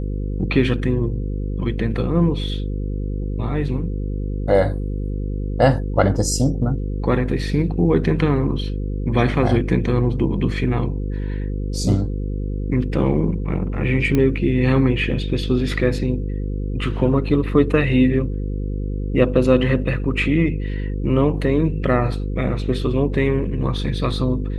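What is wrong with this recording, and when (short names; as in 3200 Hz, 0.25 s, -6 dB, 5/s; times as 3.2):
buzz 50 Hz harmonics 10 -24 dBFS
14.15 pop -8 dBFS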